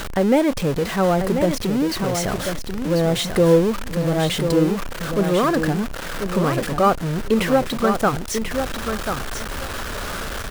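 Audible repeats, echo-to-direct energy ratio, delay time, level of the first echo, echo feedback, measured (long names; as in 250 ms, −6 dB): 2, −7.0 dB, 1,040 ms, −7.0 dB, 17%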